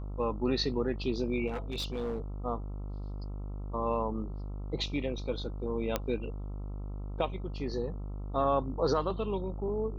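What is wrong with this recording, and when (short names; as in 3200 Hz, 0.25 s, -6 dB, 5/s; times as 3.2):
buzz 50 Hz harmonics 27 -38 dBFS
1.47–2.2 clipped -30 dBFS
5.96 pop -14 dBFS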